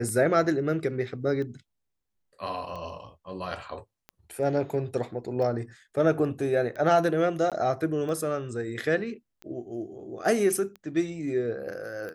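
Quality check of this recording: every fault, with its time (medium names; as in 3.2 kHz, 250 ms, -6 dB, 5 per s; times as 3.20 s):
tick 45 rpm -27 dBFS
7.50–7.52 s: dropout 17 ms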